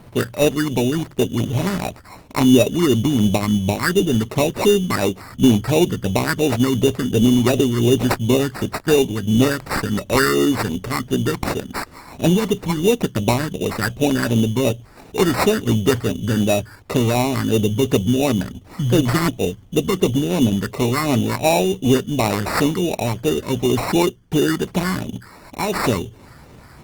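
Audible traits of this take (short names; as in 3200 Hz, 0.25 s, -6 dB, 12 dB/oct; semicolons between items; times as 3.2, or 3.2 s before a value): phasing stages 4, 2.8 Hz, lowest notch 640–1800 Hz; aliases and images of a low sample rate 3200 Hz, jitter 0%; Opus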